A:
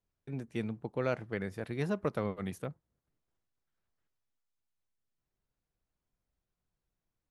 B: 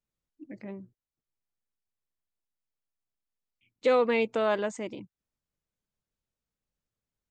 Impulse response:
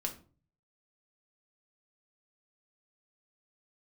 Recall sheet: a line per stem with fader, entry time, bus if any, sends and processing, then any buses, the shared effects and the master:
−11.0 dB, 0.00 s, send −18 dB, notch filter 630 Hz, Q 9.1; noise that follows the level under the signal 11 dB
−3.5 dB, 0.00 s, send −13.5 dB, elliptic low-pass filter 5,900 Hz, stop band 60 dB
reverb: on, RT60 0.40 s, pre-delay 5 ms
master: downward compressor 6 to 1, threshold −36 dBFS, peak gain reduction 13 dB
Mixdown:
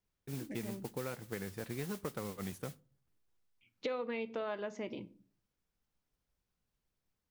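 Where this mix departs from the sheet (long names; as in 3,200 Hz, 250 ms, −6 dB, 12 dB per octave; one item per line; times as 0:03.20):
stem A −11.0 dB → −2.0 dB
stem B: send −13.5 dB → −6 dB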